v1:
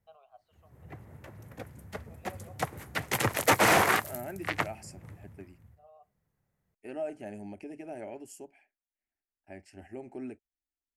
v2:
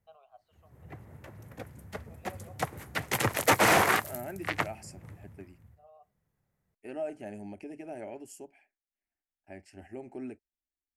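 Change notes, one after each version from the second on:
nothing changed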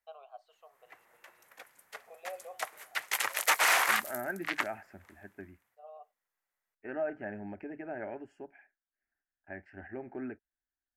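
first voice +7.0 dB
second voice: add low-pass with resonance 1,600 Hz, resonance Q 4.4
background: add high-pass filter 1,100 Hz 12 dB per octave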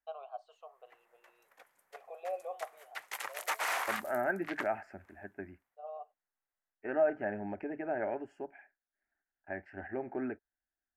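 background −11.5 dB
master: add parametric band 720 Hz +6 dB 2.3 octaves

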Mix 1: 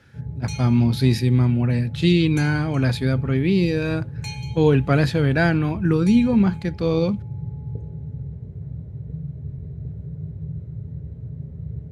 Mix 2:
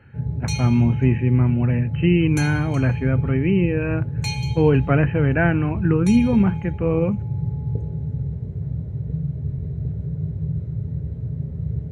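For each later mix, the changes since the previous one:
speech: add linear-phase brick-wall low-pass 3,100 Hz
background +6.0 dB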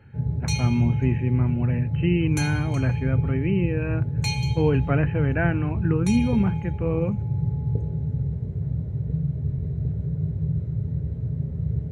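speech −5.0 dB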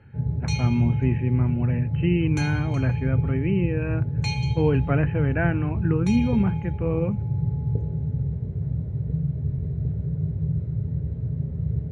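master: add high-frequency loss of the air 89 metres

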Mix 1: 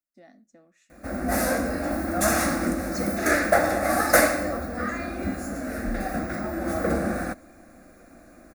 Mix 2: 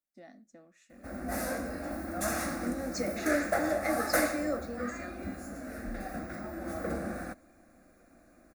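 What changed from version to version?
background −10.0 dB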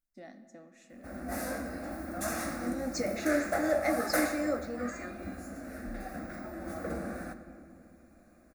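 second voice: remove Butterworth high-pass 200 Hz 72 dB per octave
background −6.0 dB
reverb: on, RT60 2.4 s

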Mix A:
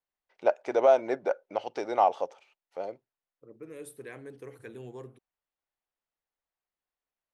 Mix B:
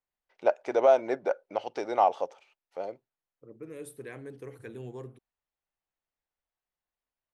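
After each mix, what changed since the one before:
second voice: add low-shelf EQ 230 Hz +5.5 dB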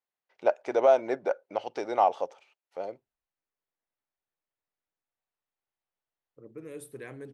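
second voice: entry +2.95 s

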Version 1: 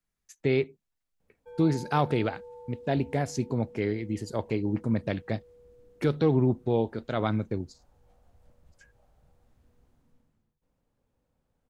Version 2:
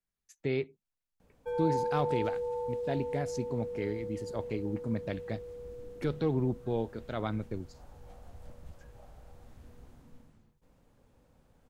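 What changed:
speech −6.5 dB
background +11.5 dB

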